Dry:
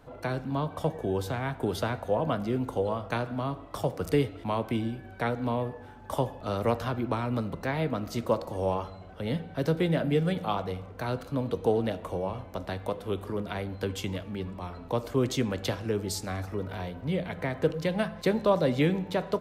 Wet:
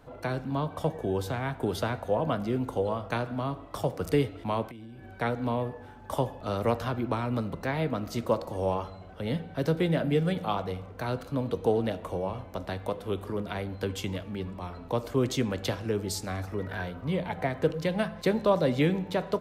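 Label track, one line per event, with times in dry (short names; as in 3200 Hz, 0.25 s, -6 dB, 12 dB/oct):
4.670000	5.210000	compressor 10:1, threshold -41 dBFS
16.570000	17.460000	bell 2100 Hz -> 720 Hz +14 dB 0.21 oct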